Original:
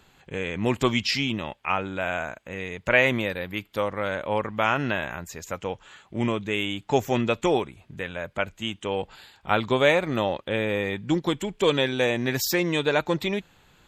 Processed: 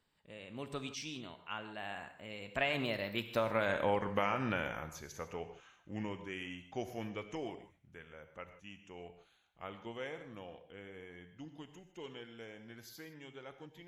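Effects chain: Doppler pass-by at 3.78 s, 38 m/s, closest 12 m; compression 6:1, threshold -30 dBFS, peak gain reduction 9 dB; gated-style reverb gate 180 ms flat, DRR 8.5 dB; trim +1 dB

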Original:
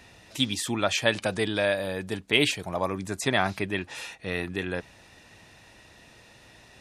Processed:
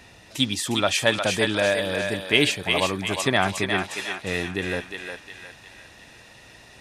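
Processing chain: thinning echo 357 ms, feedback 50%, high-pass 750 Hz, level -3.5 dB; trim +3 dB

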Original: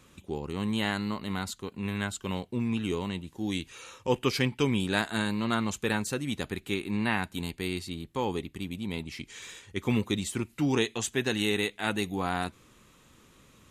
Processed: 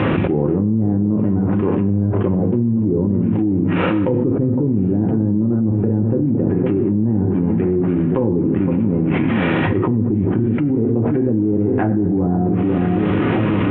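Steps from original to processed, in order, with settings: CVSD coder 16 kbps; low-pass that closes with the level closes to 340 Hz, closed at -28.5 dBFS; high-pass 210 Hz 12 dB/octave; echo whose repeats swap between lows and highs 511 ms, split 1.2 kHz, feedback 50%, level -13 dB; peak limiter -28.5 dBFS, peak gain reduction 7.5 dB; tilt EQ -4 dB/octave; band-stop 1.1 kHz, Q 23; reverberation RT60 0.65 s, pre-delay 4 ms, DRR 3.5 dB; level flattener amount 100%; trim +5.5 dB

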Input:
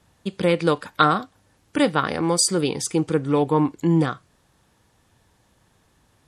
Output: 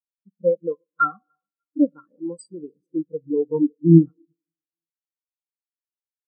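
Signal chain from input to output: on a send: feedback delay 298 ms, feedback 56%, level -16 dB; on the sum: Schroeder reverb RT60 2.4 s, combs from 30 ms, DRR 9.5 dB; spectral contrast expander 4:1; trim +1 dB

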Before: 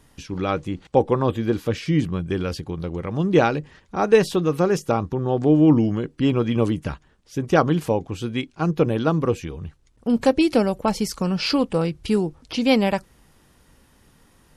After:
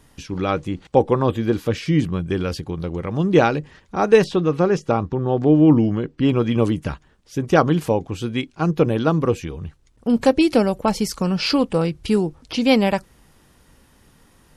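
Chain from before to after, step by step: 4.24–6.29 s: distance through air 96 m; trim +2 dB

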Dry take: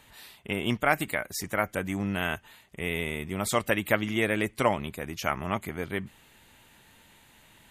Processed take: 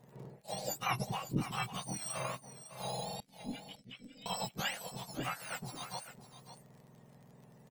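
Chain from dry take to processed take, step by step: spectrum inverted on a logarithmic axis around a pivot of 1.3 kHz; 3.20–4.26 s: vowel filter i; AM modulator 240 Hz, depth 30%; crackle 36 per s -45 dBFS; delay 553 ms -12 dB; trim -5 dB

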